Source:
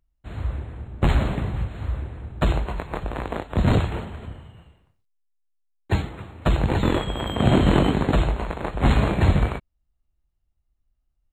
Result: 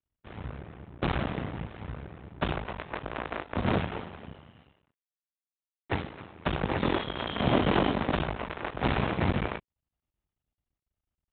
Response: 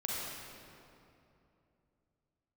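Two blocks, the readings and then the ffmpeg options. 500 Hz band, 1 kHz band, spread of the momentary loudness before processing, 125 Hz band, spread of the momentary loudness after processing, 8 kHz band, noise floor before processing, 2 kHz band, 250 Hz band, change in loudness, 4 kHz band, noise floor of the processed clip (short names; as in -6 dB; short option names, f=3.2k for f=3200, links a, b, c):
-5.0 dB, -3.5 dB, 15 LU, -11.0 dB, 16 LU, under -30 dB, -74 dBFS, -2.5 dB, -7.0 dB, -7.5 dB, -3.5 dB, under -85 dBFS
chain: -af "aresample=8000,aeval=exprs='max(val(0),0)':c=same,aresample=44100,highpass=f=180:p=1"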